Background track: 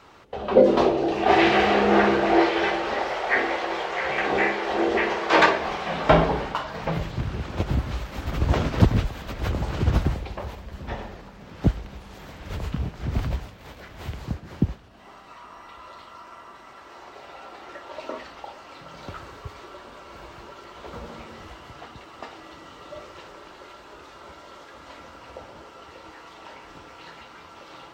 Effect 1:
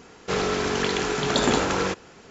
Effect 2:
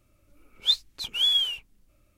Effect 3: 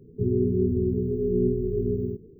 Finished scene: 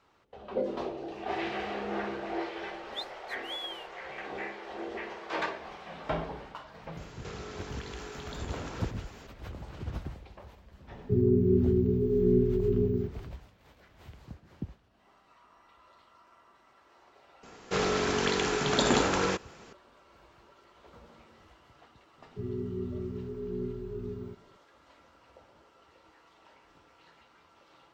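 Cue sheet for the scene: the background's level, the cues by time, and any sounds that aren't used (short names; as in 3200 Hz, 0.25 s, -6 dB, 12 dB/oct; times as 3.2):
background track -16 dB
2.29 add 2 -17 dB
6.97 add 1 -2.5 dB + compressor 5:1, threshold -39 dBFS
10.91 add 3 -0.5 dB
17.43 add 1 -3.5 dB
22.18 add 3 -12 dB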